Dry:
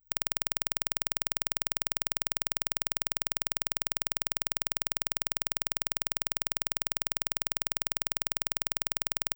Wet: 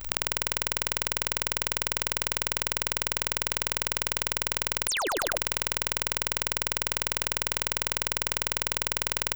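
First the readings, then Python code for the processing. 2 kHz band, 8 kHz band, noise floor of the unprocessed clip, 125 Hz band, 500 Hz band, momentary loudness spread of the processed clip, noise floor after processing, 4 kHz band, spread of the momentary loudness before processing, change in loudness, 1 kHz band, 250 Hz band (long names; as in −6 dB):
+7.0 dB, +2.0 dB, −65 dBFS, +7.5 dB, +9.0 dB, 0 LU, −37 dBFS, +5.0 dB, 0 LU, +3.0 dB, +7.0 dB, +4.5 dB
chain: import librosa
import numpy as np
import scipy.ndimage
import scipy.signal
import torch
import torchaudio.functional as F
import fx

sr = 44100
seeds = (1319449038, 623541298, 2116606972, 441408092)

y = fx.high_shelf(x, sr, hz=5800.0, db=-7.5)
y = fx.spec_paint(y, sr, seeds[0], shape='fall', start_s=4.88, length_s=0.2, low_hz=290.0, high_hz=11000.0, level_db=-24.0)
y = fx.dmg_crackle(y, sr, seeds[1], per_s=40.0, level_db=-57.0)
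y = fx.echo_feedback(y, sr, ms=102, feedback_pct=26, wet_db=-7.0)
y = fx.env_flatten(y, sr, amount_pct=100)
y = y * librosa.db_to_amplitude(-5.5)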